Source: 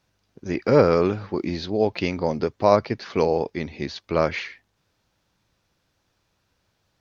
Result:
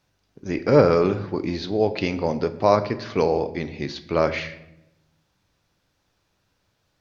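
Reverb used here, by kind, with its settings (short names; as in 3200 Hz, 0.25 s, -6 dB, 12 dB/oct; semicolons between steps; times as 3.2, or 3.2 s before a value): shoebox room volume 280 m³, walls mixed, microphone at 0.34 m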